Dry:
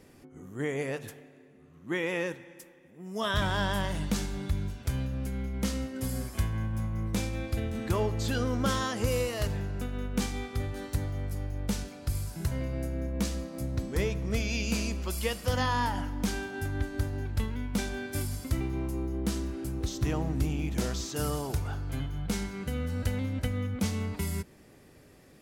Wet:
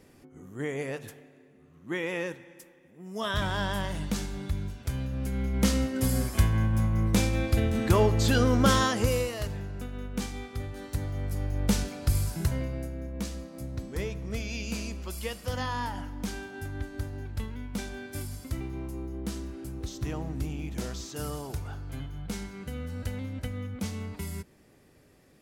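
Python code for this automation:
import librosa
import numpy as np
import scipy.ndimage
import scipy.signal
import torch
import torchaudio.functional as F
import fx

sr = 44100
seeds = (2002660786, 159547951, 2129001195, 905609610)

y = fx.gain(x, sr, db=fx.line((4.99, -1.0), (5.63, 6.5), (8.82, 6.5), (9.45, -3.0), (10.76, -3.0), (11.68, 6.0), (12.29, 6.0), (12.96, -4.0)))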